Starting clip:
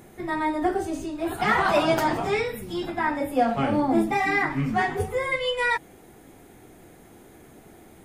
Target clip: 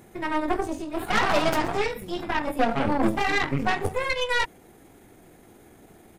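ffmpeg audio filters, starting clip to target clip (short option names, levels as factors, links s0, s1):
-af "atempo=1.3,aeval=exprs='0.335*(cos(1*acos(clip(val(0)/0.335,-1,1)))-cos(1*PI/2))+0.0668*(cos(6*acos(clip(val(0)/0.335,-1,1)))-cos(6*PI/2))':c=same,volume=0.794"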